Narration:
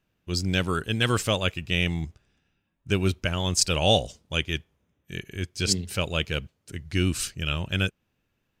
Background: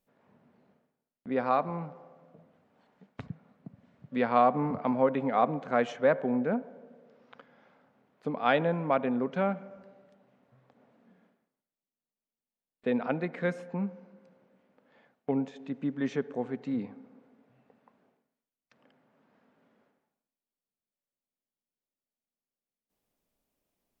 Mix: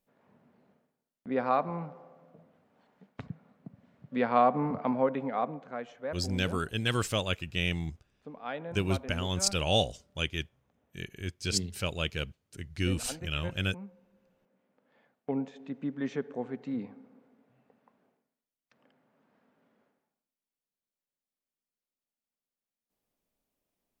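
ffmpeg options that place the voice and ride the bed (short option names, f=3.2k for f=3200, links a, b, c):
-filter_complex "[0:a]adelay=5850,volume=-5.5dB[a];[1:a]volume=9.5dB,afade=t=out:st=4.84:d=0.96:silence=0.251189,afade=t=in:st=14.07:d=1.32:silence=0.316228[b];[a][b]amix=inputs=2:normalize=0"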